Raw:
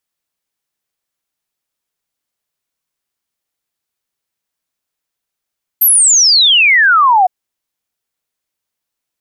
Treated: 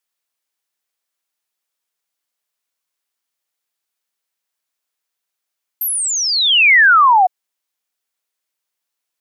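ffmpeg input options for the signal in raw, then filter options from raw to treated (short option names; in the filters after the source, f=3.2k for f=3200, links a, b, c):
-f lavfi -i "aevalsrc='0.531*clip(min(t,1.46-t)/0.01,0,1)*sin(2*PI*13000*1.46/log(710/13000)*(exp(log(710/13000)*t/1.46)-1))':d=1.46:s=44100"
-filter_complex "[0:a]acrossover=split=2800[a][b];[b]acompressor=threshold=-20dB:ratio=4:attack=1:release=60[c];[a][c]amix=inputs=2:normalize=0,highpass=f=570:p=1"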